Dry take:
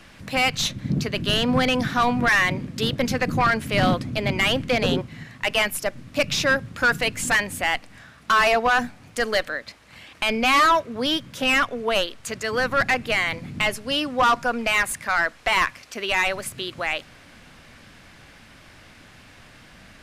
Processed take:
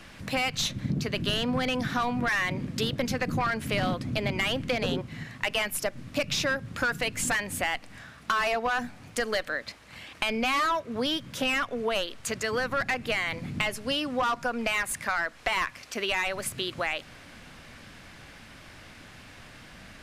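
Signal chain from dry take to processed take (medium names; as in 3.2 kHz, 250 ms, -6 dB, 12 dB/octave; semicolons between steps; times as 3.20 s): compression, threshold -25 dBFS, peak gain reduction 9 dB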